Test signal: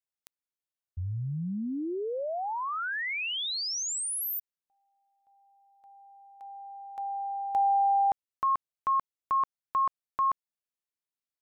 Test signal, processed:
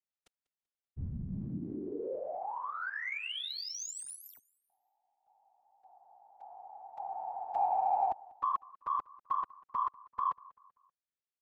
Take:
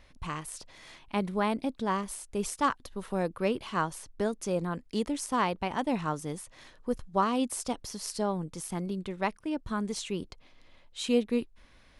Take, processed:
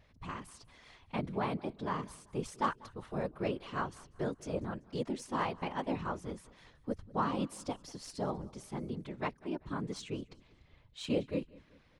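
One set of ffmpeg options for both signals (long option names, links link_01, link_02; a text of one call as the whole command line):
ffmpeg -i in.wav -af "afftfilt=real='hypot(re,im)*cos(2*PI*random(0))':imag='hypot(re,im)*sin(2*PI*random(1))':win_size=512:overlap=0.75,aecho=1:1:193|386|579:0.075|0.0307|0.0126,adynamicsmooth=sensitivity=5:basefreq=6600" out.wav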